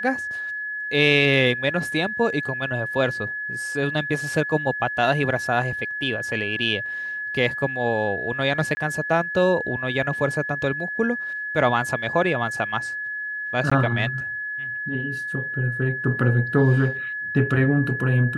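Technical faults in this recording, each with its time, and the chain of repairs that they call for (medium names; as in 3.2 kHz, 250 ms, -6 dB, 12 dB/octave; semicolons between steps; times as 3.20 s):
whine 1.7 kHz -27 dBFS
8.75–8.77 s: dropout 20 ms
13.70–13.71 s: dropout 15 ms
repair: band-stop 1.7 kHz, Q 30; interpolate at 8.75 s, 20 ms; interpolate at 13.70 s, 15 ms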